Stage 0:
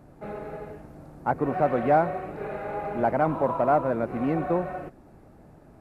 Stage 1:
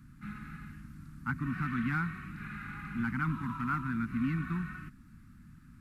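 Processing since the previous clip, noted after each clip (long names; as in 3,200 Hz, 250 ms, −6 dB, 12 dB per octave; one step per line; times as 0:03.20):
Chebyshev band-stop filter 240–1,300 Hz, order 3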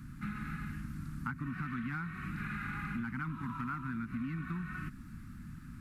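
downward compressor 10 to 1, threshold −42 dBFS, peak gain reduction 14.5 dB
level +7 dB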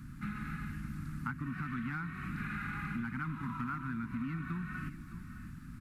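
single-tap delay 612 ms −13 dB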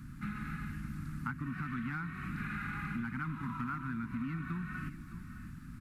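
no processing that can be heard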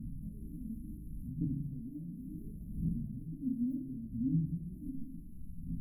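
phase shifter 0.7 Hz, delay 4.5 ms, feedback 73%
linear-phase brick-wall band-stop 660–10,000 Hz
rectangular room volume 600 cubic metres, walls furnished, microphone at 1.6 metres
level −6 dB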